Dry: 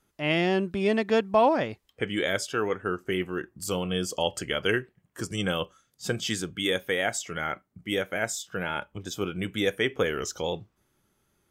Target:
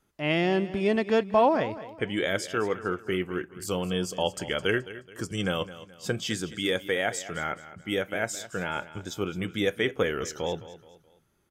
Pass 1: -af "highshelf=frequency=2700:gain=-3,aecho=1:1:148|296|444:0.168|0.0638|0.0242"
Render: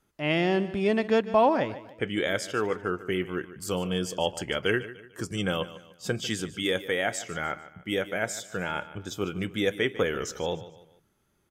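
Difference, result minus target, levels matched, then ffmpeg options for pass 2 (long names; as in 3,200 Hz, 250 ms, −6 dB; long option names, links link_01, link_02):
echo 65 ms early
-af "highshelf=frequency=2700:gain=-3,aecho=1:1:213|426|639:0.168|0.0638|0.0242"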